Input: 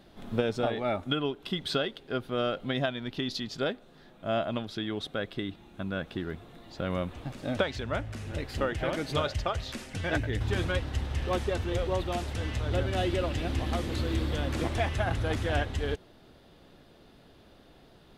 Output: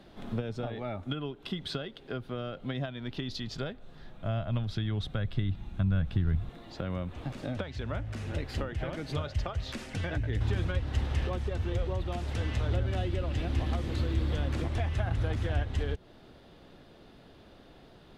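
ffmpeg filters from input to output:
ffmpeg -i in.wav -filter_complex "[0:a]asettb=1/sr,asplit=3[link_01][link_02][link_03];[link_01]atrim=end=2.944[link_04];[link_02]atrim=start=2.94:end=6.49,asetpts=PTS-STARTPTS,afade=type=in:duration=0.004:curve=qsin,afade=type=out:start_time=3.546:duration=0.004:curve=qsin,asubboost=boost=11.5:cutoff=120[link_05];[link_03]atrim=start=6.486[link_06];[link_04][link_05]acrossfade=duration=0.004:curve1=hsin:curve2=qsin[link_07];[link_07][link_06]acrossfade=duration=0.004:curve1=qsin:curve2=hsin,highshelf=frequency=7800:gain=-8.5,acrossover=split=160[link_08][link_09];[link_09]acompressor=threshold=-37dB:ratio=6[link_10];[link_08][link_10]amix=inputs=2:normalize=0,volume=2dB" out.wav

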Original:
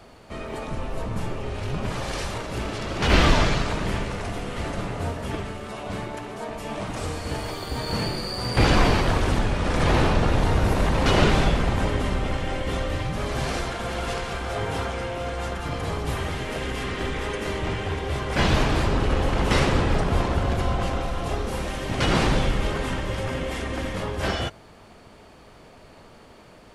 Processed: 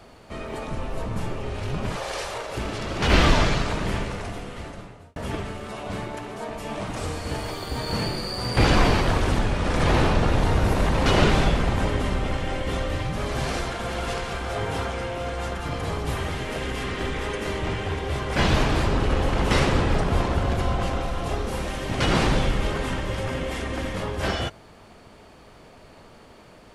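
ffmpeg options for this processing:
ffmpeg -i in.wav -filter_complex "[0:a]asettb=1/sr,asplit=3[link_01][link_02][link_03];[link_01]atrim=end=1.964[link_04];[link_02]atrim=start=1.96:end=2.57,asetpts=PTS-STARTPTS,afade=type=in:duration=0.004:curve=qsin,afade=type=out:start_time=0.606:duration=0.004:curve=qsin,lowshelf=frequency=350:width_type=q:width=1.5:gain=-10[link_05];[link_03]atrim=start=2.566[link_06];[link_04][link_05]acrossfade=duration=0.004:curve1=hsin:curve2=qsin[link_07];[link_07][link_06]acrossfade=duration=0.004:curve1=qsin:curve2=hsin,asplit=2[link_08][link_09];[link_08]atrim=end=5.16,asetpts=PTS-STARTPTS,afade=type=out:start_time=4.01:duration=1.15[link_10];[link_09]atrim=start=5.16,asetpts=PTS-STARTPTS,afade=type=in:duration=0.004:curve=hsin[link_11];[link_10][link_11]concat=n=2:v=0:a=1" out.wav

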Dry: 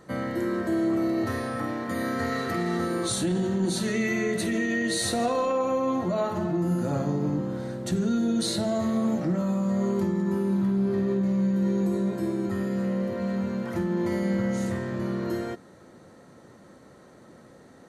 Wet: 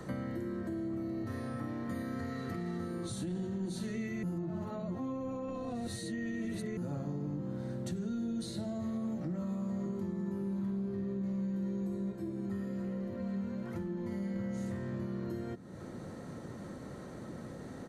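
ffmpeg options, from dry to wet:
ffmpeg -i in.wav -filter_complex "[0:a]asplit=2[link_01][link_02];[link_02]afade=type=in:start_time=8.83:duration=0.01,afade=type=out:start_time=9.42:duration=0.01,aecho=0:1:580|1160|1740|2320|2900|3480|4060|4640|5220:0.334965|0.217728|0.141523|0.0919899|0.0597934|0.0388657|0.0252627|0.0164208|0.0106735[link_03];[link_01][link_03]amix=inputs=2:normalize=0,asettb=1/sr,asplit=3[link_04][link_05][link_06];[link_04]atrim=end=12.124[link_07];[link_05]atrim=start=12.12:end=14.36,asetpts=PTS-STARTPTS,afade=type=in:duration=0.004:curve=qsin,afade=type=out:start_time=2.236:duration=0.004:curve=qsin,flanger=delay=2:depth=3:regen=60:speed=1.2:shape=triangular[link_08];[link_06]atrim=start=14.356[link_09];[link_07][link_08]acrossfade=duration=0.004:curve1=hsin:curve2=qsin[link_10];[link_10][link_09]acrossfade=duration=0.004:curve1=qsin:curve2=hsin,asplit=3[link_11][link_12][link_13];[link_11]atrim=end=4.232[link_14];[link_12]atrim=start=4.228:end=6.772,asetpts=PTS-STARTPTS,areverse[link_15];[link_13]atrim=start=6.768[link_16];[link_14][link_15]acrossfade=duration=0.004:curve1=hsin:curve2=hsin[link_17];[link_17][link_16]acrossfade=duration=0.004:curve1=hsin:curve2=hsin,alimiter=limit=-20.5dB:level=0:latency=1:release=437,lowshelf=frequency=260:gain=7,acrossover=split=110|260[link_18][link_19][link_20];[link_18]acompressor=threshold=-57dB:ratio=4[link_21];[link_19]acompressor=threshold=-47dB:ratio=4[link_22];[link_20]acompressor=threshold=-51dB:ratio=4[link_23];[link_21][link_22][link_23]amix=inputs=3:normalize=0,volume=4.5dB" out.wav

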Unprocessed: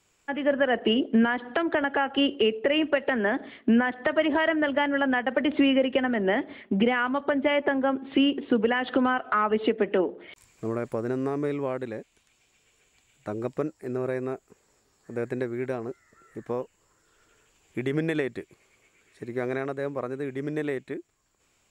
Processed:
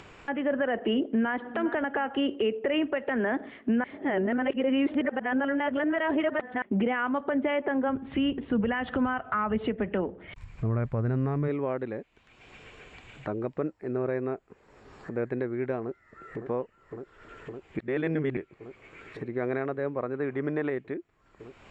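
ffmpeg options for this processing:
ffmpeg -i in.wav -filter_complex "[0:a]asplit=2[link_01][link_02];[link_02]afade=type=in:start_time=1.03:duration=0.01,afade=type=out:start_time=1.48:duration=0.01,aecho=0:1:410|820:0.177828|0.0355656[link_03];[link_01][link_03]amix=inputs=2:normalize=0,asplit=3[link_04][link_05][link_06];[link_04]afade=type=out:start_time=7.87:duration=0.02[link_07];[link_05]asubboost=boost=9.5:cutoff=110,afade=type=in:start_time=7.87:duration=0.02,afade=type=out:start_time=11.47:duration=0.02[link_08];[link_06]afade=type=in:start_time=11.47:duration=0.02[link_09];[link_07][link_08][link_09]amix=inputs=3:normalize=0,asplit=2[link_10][link_11];[link_11]afade=type=in:start_time=15.8:duration=0.01,afade=type=out:start_time=16.43:duration=0.01,aecho=0:1:560|1120|1680|2240|2800|3360|3920|4480|5040|5600|6160|6720:0.354813|0.283851|0.227081|0.181664|0.145332|0.116265|0.0930122|0.0744098|0.0595278|0.0476222|0.0380978|0.0304782[link_12];[link_10][link_12]amix=inputs=2:normalize=0,asettb=1/sr,asplit=3[link_13][link_14][link_15];[link_13]atrim=end=20.144[link_16];[link_14]atrim=start=20.14:end=20.7,asetpts=PTS-STARTPTS,afade=type=in:duration=0.004:curve=qsin,afade=type=out:start_time=0.556:duration=0.004:curve=qsin,equalizer=frequency=1100:width_type=o:width=1.7:gain=7.5[link_17];[link_15]atrim=start=20.696[link_18];[link_16][link_17]acrossfade=duration=0.004:curve1=hsin:curve2=qsin[link_19];[link_19][link_18]acrossfade=duration=0.004:curve1=qsin:curve2=hsin,asplit=5[link_20][link_21][link_22][link_23][link_24];[link_20]atrim=end=3.842[link_25];[link_21]atrim=start=3.838:end=6.622,asetpts=PTS-STARTPTS,areverse[link_26];[link_22]atrim=start=6.618:end=17.792[link_27];[link_23]atrim=start=17.788:end=18.372,asetpts=PTS-STARTPTS,areverse[link_28];[link_24]atrim=start=18.368[link_29];[link_25][link_26]acrossfade=duration=0.004:curve1=hsin:curve2=hsin[link_30];[link_30][link_27]acrossfade=duration=0.004:curve1=hsin:curve2=hsin[link_31];[link_31][link_28]acrossfade=duration=0.004:curve1=hsin:curve2=hsin[link_32];[link_32][link_29]acrossfade=duration=0.004:curve1=hsin:curve2=hsin,lowpass=2300,acompressor=mode=upward:threshold=-32dB:ratio=2.5,alimiter=limit=-18.5dB:level=0:latency=1:release=44" out.wav

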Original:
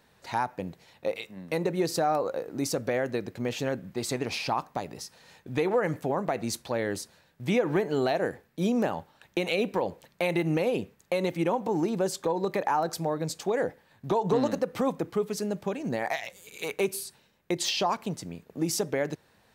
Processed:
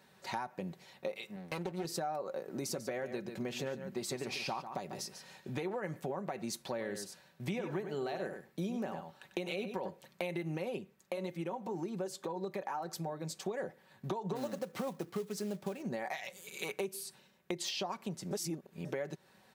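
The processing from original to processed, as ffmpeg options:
ffmpeg -i in.wav -filter_complex "[0:a]asettb=1/sr,asplit=3[link_01][link_02][link_03];[link_01]atrim=end=1.364[link_04];[link_02]atrim=start=1.36:end=1.85,asetpts=PTS-STARTPTS,afade=type=in:duration=0.004:curve=qsin,afade=type=out:start_time=0.486:duration=0.004:curve=qsin,aeval=exprs='max(val(0),0)':channel_layout=same[link_05];[link_03]atrim=start=1.846[link_06];[link_04][link_05]acrossfade=duration=0.004:curve1=hsin:curve2=qsin[link_07];[link_07][link_06]acrossfade=duration=0.004:curve1=qsin:curve2=hsin,asettb=1/sr,asplit=3[link_08][link_09][link_10];[link_08]atrim=end=2.424[link_11];[link_09]atrim=start=2.42:end=5.64,asetpts=PTS-STARTPTS,afade=type=in:duration=0.004:curve=qsin,afade=type=out:start_time=3.216:duration=0.004:curve=qsin,aecho=1:1:144:0.266,atrim=end_sample=142002[link_12];[link_10]atrim=start=5.636[link_13];[link_11][link_12]acrossfade=duration=0.004:curve1=hsin:curve2=qsin[link_14];[link_14][link_13]acrossfade=duration=0.004:curve1=qsin:curve2=hsin,asettb=1/sr,asplit=3[link_15][link_16][link_17];[link_15]atrim=end=6.694[link_18];[link_16]atrim=start=6.69:end=9.9,asetpts=PTS-STARTPTS,afade=type=in:duration=0.004:curve=qsin,afade=type=out:start_time=3.206:duration=0.004:curve=qsin,aecho=1:1:96:0.335,atrim=end_sample=141561[link_19];[link_17]atrim=start=9.896[link_20];[link_18][link_19]acrossfade=duration=0.004:curve1=hsin:curve2=qsin[link_21];[link_21][link_20]acrossfade=duration=0.004:curve1=qsin:curve2=hsin,asettb=1/sr,asplit=3[link_22][link_23][link_24];[link_22]atrim=end=10.784[link_25];[link_23]atrim=start=10.78:end=13.46,asetpts=PTS-STARTPTS,afade=type=in:duration=0.004:curve=qsin,afade=type=out:start_time=2.676:duration=0.004:curve=qsin,flanger=delay=0.5:depth=3.2:regen=-75:speed=1.8:shape=sinusoidal[link_26];[link_24]atrim=start=13.456[link_27];[link_25][link_26]acrossfade=duration=0.004:curve1=hsin:curve2=qsin[link_28];[link_28][link_27]acrossfade=duration=0.004:curve1=qsin:curve2=hsin,asplit=3[link_29][link_30][link_31];[link_29]afade=type=out:start_time=14.35:duration=0.02[link_32];[link_30]acrusher=bits=4:mode=log:mix=0:aa=0.000001,afade=type=in:start_time=14.35:duration=0.02,afade=type=out:start_time=15.81:duration=0.02[link_33];[link_31]afade=type=in:start_time=15.81:duration=0.02[link_34];[link_32][link_33][link_34]amix=inputs=3:normalize=0,asplit=3[link_35][link_36][link_37];[link_35]atrim=end=18.312[link_38];[link_36]atrim=start=18.308:end=18.852,asetpts=PTS-STARTPTS,areverse[link_39];[link_37]atrim=start=18.848[link_40];[link_38][link_39]acrossfade=duration=0.004:curve1=hsin:curve2=hsin[link_41];[link_41][link_40]acrossfade=duration=0.004:curve1=hsin:curve2=hsin,highpass=95,aecho=1:1:5.3:0.48,acompressor=threshold=-35dB:ratio=4,volume=-1.5dB" out.wav

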